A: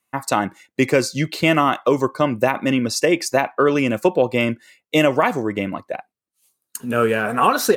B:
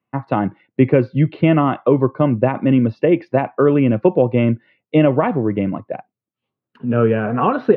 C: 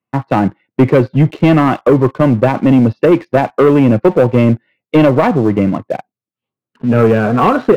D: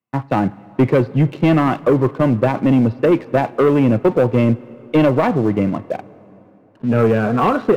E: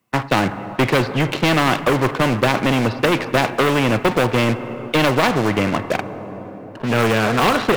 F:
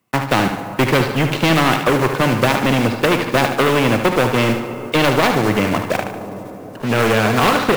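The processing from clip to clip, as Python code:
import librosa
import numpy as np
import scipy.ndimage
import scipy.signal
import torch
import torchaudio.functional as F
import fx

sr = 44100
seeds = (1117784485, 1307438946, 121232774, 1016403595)

y1 = scipy.signal.sosfilt(scipy.signal.ellip(3, 1.0, 40, [110.0, 3100.0], 'bandpass', fs=sr, output='sos'), x)
y1 = fx.tilt_eq(y1, sr, slope=-4.0)
y1 = y1 * 10.0 ** (-2.0 / 20.0)
y2 = fx.leveller(y1, sr, passes=2)
y3 = fx.rev_plate(y2, sr, seeds[0], rt60_s=3.4, hf_ratio=0.75, predelay_ms=0, drr_db=19.5)
y3 = y3 * 10.0 ** (-4.5 / 20.0)
y4 = fx.spectral_comp(y3, sr, ratio=2.0)
y4 = y4 * 10.0 ** (2.0 / 20.0)
y5 = fx.block_float(y4, sr, bits=5)
y5 = fx.echo_feedback(y5, sr, ms=74, feedback_pct=46, wet_db=-8)
y5 = y5 * 10.0 ** (1.0 / 20.0)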